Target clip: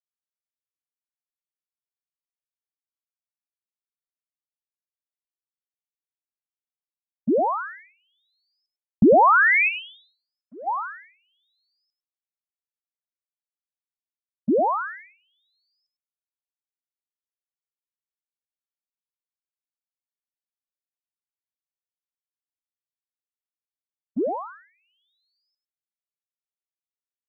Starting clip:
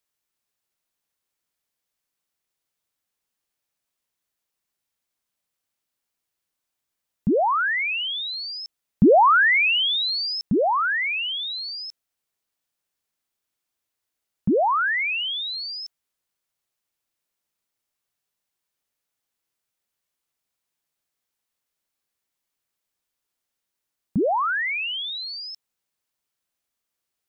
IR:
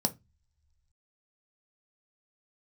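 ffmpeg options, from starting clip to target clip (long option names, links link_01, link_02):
-filter_complex "[0:a]agate=range=-44dB:threshold=-21dB:ratio=16:detection=peak,asplit=3[link_01][link_02][link_03];[link_01]afade=type=out:start_time=9.68:duration=0.02[link_04];[link_02]bandpass=frequency=1600:width_type=q:width=2.7:csg=0,afade=type=in:start_time=9.68:duration=0.02,afade=type=out:start_time=10.66:duration=0.02[link_05];[link_03]afade=type=in:start_time=10.66:duration=0.02[link_06];[link_04][link_05][link_06]amix=inputs=3:normalize=0,aecho=1:1:101:0.251"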